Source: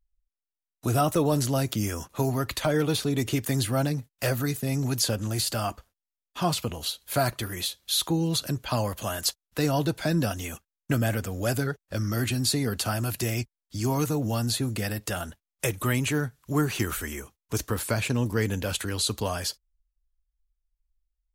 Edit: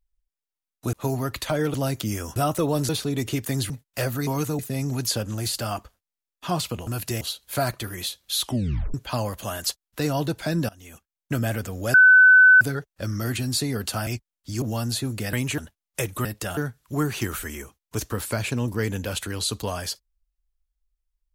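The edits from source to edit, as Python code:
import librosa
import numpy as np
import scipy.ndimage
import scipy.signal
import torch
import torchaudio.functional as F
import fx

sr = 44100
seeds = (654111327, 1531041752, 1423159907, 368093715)

y = fx.edit(x, sr, fx.swap(start_s=0.93, length_s=0.53, other_s=2.08, other_length_s=0.81),
    fx.cut(start_s=3.7, length_s=0.25),
    fx.tape_stop(start_s=8.01, length_s=0.52),
    fx.fade_in_from(start_s=10.28, length_s=0.71, floor_db=-23.5),
    fx.insert_tone(at_s=11.53, length_s=0.67, hz=1510.0, db=-9.0),
    fx.move(start_s=12.99, length_s=0.34, to_s=6.8),
    fx.move(start_s=13.88, length_s=0.32, to_s=4.52),
    fx.swap(start_s=14.91, length_s=0.32, other_s=15.9, other_length_s=0.25), tone=tone)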